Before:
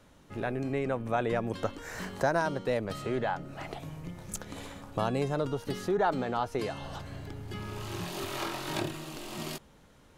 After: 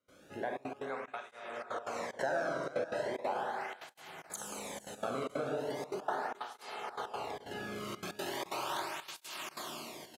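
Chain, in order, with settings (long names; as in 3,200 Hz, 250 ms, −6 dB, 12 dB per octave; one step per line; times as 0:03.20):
low-shelf EQ 340 Hz −4.5 dB
four-comb reverb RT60 2.6 s, combs from 30 ms, DRR −2.5 dB
gate pattern ".xxxxxx.x.xxx" 185 BPM −24 dB
downward compressor 2.5 to 1, threshold −37 dBFS, peak gain reduction 10.5 dB
single-tap delay 428 ms −13.5 dB
dynamic equaliser 1,000 Hz, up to +4 dB, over −46 dBFS, Q 0.94
0:00.90–0:03.14: low-pass filter 10,000 Hz 12 dB per octave
through-zero flanger with one copy inverted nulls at 0.38 Hz, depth 1.2 ms
level +1 dB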